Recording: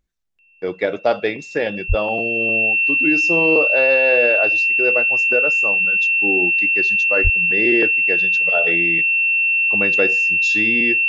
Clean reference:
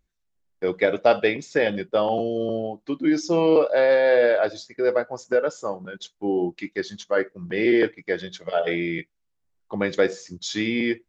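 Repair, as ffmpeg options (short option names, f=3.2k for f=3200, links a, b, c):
-filter_complex "[0:a]bandreject=f=2.7k:w=30,asplit=3[a][b][c];[a]afade=t=out:st=1.88:d=0.02[d];[b]highpass=f=140:w=0.5412,highpass=f=140:w=1.3066,afade=t=in:st=1.88:d=0.02,afade=t=out:st=2:d=0.02[e];[c]afade=t=in:st=2:d=0.02[f];[d][e][f]amix=inputs=3:normalize=0,asplit=3[g][h][i];[g]afade=t=out:st=7.23:d=0.02[j];[h]highpass=f=140:w=0.5412,highpass=f=140:w=1.3066,afade=t=in:st=7.23:d=0.02,afade=t=out:st=7.35:d=0.02[k];[i]afade=t=in:st=7.35:d=0.02[l];[j][k][l]amix=inputs=3:normalize=0"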